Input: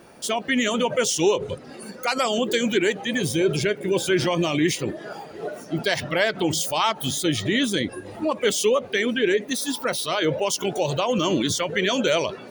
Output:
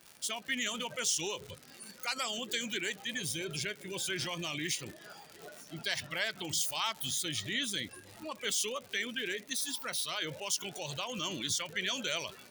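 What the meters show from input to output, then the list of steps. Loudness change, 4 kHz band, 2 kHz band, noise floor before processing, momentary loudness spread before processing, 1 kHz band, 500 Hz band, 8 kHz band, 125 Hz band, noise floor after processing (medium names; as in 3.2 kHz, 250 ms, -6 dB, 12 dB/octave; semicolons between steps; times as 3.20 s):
-11.5 dB, -7.5 dB, -10.0 dB, -42 dBFS, 8 LU, -15.0 dB, -20.0 dB, -6.0 dB, -16.0 dB, -55 dBFS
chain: crackle 130 per s -30 dBFS; amplifier tone stack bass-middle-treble 5-5-5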